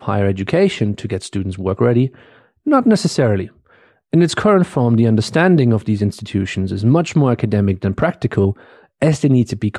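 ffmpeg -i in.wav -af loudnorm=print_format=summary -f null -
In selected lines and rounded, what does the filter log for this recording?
Input Integrated:    -16.5 LUFS
Input True Peak:      -3.2 dBTP
Input LRA:             2.6 LU
Input Threshold:     -26.8 LUFS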